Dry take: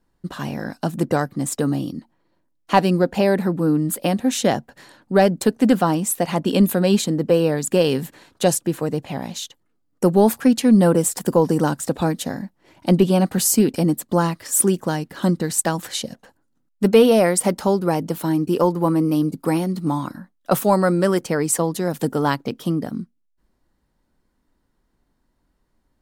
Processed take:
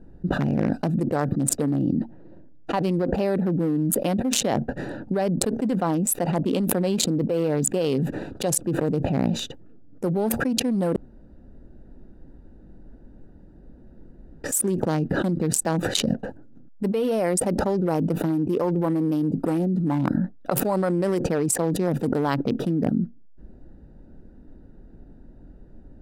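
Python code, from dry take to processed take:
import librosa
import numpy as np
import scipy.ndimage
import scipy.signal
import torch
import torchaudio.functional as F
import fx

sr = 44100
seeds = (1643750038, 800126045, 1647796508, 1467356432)

y = fx.edit(x, sr, fx.room_tone_fill(start_s=10.96, length_s=3.48), tone=tone)
y = fx.wiener(y, sr, points=41)
y = fx.dynamic_eq(y, sr, hz=520.0, q=0.71, threshold_db=-25.0, ratio=4.0, max_db=4)
y = fx.env_flatten(y, sr, amount_pct=100)
y = F.gain(torch.from_numpy(y), -17.0).numpy()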